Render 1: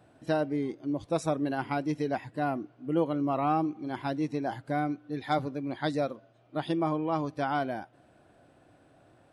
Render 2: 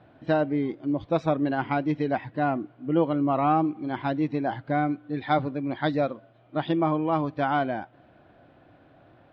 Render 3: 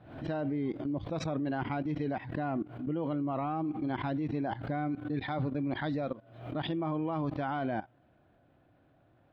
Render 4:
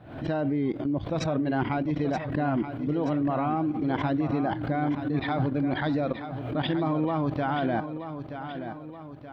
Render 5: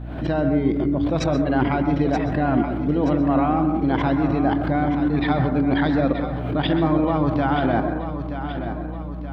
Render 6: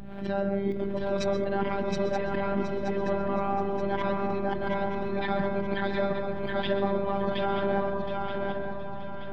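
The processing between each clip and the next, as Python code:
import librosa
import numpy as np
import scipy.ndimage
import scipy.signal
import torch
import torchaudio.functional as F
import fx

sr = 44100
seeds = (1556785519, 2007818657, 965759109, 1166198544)

y1 = scipy.signal.sosfilt(scipy.signal.butter(4, 3700.0, 'lowpass', fs=sr, output='sos'), x)
y1 = fx.peak_eq(y1, sr, hz=430.0, db=-2.5, octaves=0.41)
y1 = fx.notch(y1, sr, hz=2700.0, q=29.0)
y1 = y1 * 10.0 ** (5.0 / 20.0)
y2 = fx.level_steps(y1, sr, step_db=17)
y2 = fx.low_shelf(y2, sr, hz=190.0, db=6.5)
y2 = fx.pre_swell(y2, sr, db_per_s=87.0)
y3 = fx.echo_feedback(y2, sr, ms=927, feedback_pct=49, wet_db=-9.5)
y3 = y3 * 10.0 ** (6.0 / 20.0)
y4 = fx.add_hum(y3, sr, base_hz=60, snr_db=10)
y4 = fx.rev_plate(y4, sr, seeds[0], rt60_s=0.61, hf_ratio=0.25, predelay_ms=115, drr_db=7.5)
y4 = y4 * 10.0 ** (5.5 / 20.0)
y5 = fx.robotise(y4, sr, hz=198.0)
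y5 = fx.echo_feedback(y5, sr, ms=720, feedback_pct=28, wet_db=-3.0)
y5 = y5 * 10.0 ** (-4.5 / 20.0)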